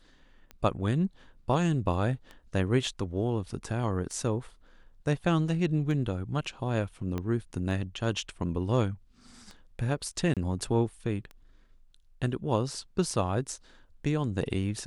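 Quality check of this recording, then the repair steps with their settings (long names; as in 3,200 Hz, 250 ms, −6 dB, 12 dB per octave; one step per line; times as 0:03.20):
scratch tick 33 1/3 rpm −29 dBFS
0:07.18: click −20 dBFS
0:10.34–0:10.37: drop-out 27 ms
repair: click removal
repair the gap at 0:10.34, 27 ms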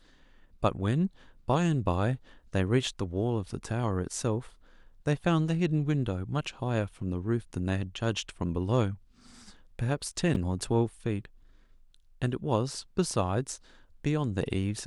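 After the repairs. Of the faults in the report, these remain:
0:07.18: click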